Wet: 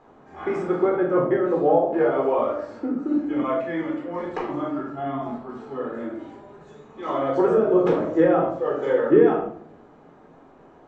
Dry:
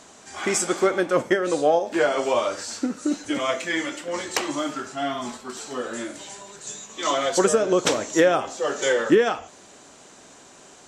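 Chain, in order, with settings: LPF 1100 Hz 12 dB/oct; notches 50/100/150/200 Hz; reverb RT60 0.60 s, pre-delay 14 ms, DRR -1 dB; gain -4 dB

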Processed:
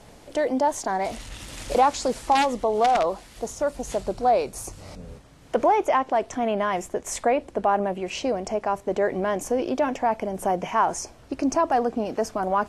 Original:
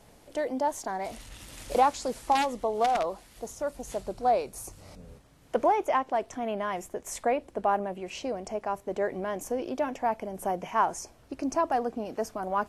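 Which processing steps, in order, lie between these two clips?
LPF 9500 Hz 12 dB/oct; in parallel at +3 dB: limiter -23 dBFS, peak gain reduction 11.5 dB

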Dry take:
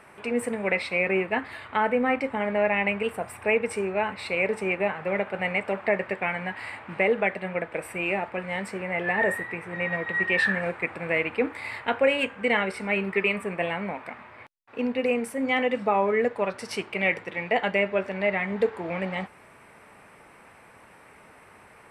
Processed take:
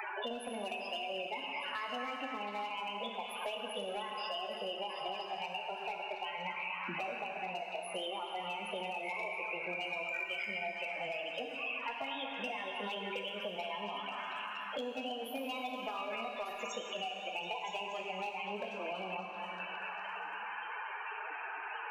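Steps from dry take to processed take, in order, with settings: HPF 280 Hz 12 dB/oct; compressor 10:1, threshold -37 dBFS, peak gain reduction 20 dB; formant shift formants +4 st; loudest bins only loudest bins 16; overloaded stage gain 33.5 dB; on a send: delay with a stepping band-pass 0.24 s, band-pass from 1300 Hz, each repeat 0.7 oct, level -2 dB; on the sum: plate-style reverb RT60 1.9 s, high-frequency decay 0.95×, DRR 2.5 dB; three-band squash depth 100%

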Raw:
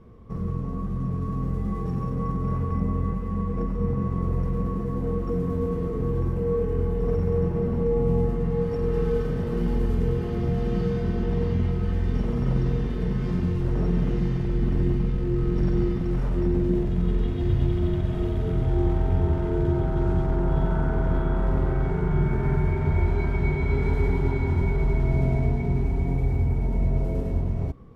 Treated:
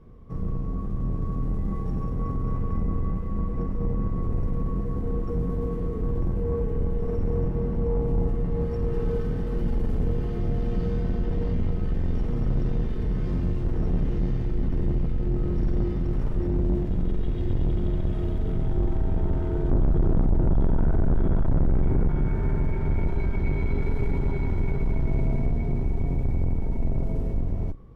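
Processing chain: octaver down 2 oct, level +4 dB; 19.7–22.09 low shelf 440 Hz +9.5 dB; soft clip -13 dBFS, distortion -8 dB; gain -3.5 dB

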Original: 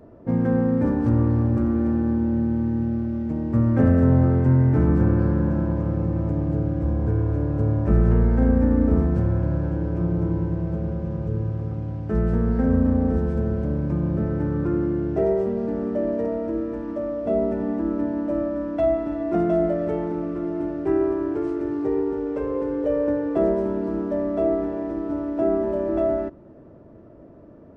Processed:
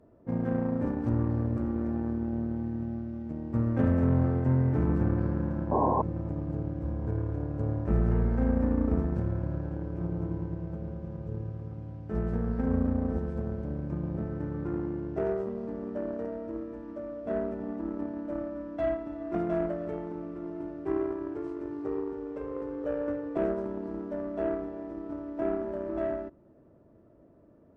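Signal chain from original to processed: added harmonics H 7 -25 dB, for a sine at -6.5 dBFS; painted sound noise, 5.71–6.02, 210–1100 Hz -18 dBFS; gain -7.5 dB

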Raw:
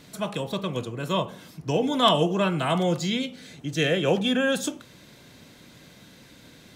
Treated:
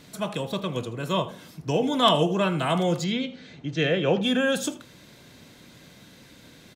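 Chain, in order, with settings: 3.04–4.23 Bessel low-pass 3900 Hz, order 4; echo 80 ms -18 dB

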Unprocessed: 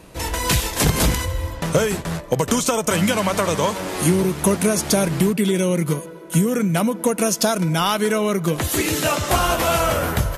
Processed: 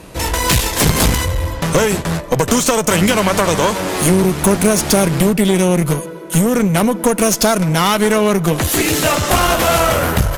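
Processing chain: one-sided clip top -24 dBFS; gain +7.5 dB

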